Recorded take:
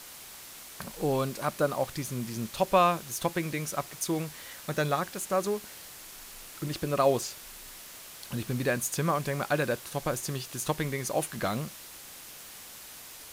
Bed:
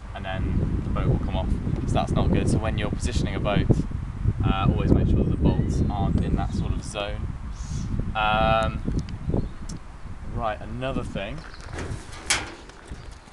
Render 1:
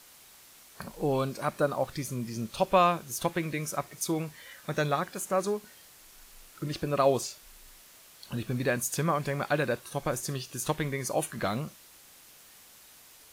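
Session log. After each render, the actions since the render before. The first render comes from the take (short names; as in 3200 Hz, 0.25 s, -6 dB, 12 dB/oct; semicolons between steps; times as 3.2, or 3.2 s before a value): noise print and reduce 8 dB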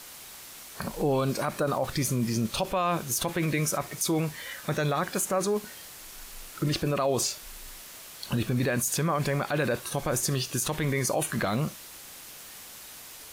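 in parallel at +1 dB: negative-ratio compressor -34 dBFS, ratio -1; on the sum: limiter -17.5 dBFS, peak gain reduction 7.5 dB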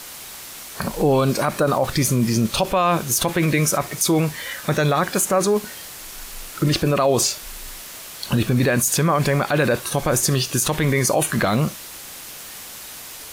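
gain +8.5 dB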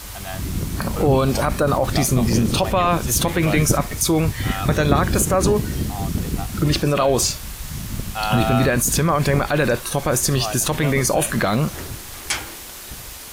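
add bed -1 dB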